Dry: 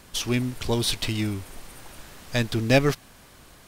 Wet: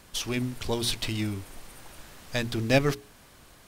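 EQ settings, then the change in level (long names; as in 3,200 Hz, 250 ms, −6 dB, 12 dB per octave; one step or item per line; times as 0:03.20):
mains-hum notches 60/120/180/240/300/360/420 Hz
−3.0 dB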